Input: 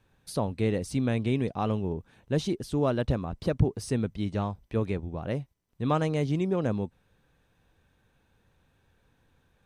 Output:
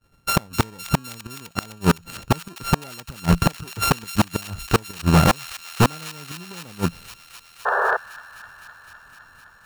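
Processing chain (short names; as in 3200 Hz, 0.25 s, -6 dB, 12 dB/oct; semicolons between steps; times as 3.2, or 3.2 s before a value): sample sorter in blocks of 32 samples; expander -56 dBFS; dynamic EQ 170 Hz, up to +8 dB, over -48 dBFS, Q 8; flipped gate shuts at -20 dBFS, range -35 dB; in parallel at -5 dB: sample gate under -34.5 dBFS; on the sum: painted sound noise, 7.65–7.97, 380–1800 Hz -39 dBFS; sine folder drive 7 dB, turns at -17 dBFS; on a send: thin delay 0.256 s, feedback 82%, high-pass 2400 Hz, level -10.5 dB; on the sum: gain +8.5 dB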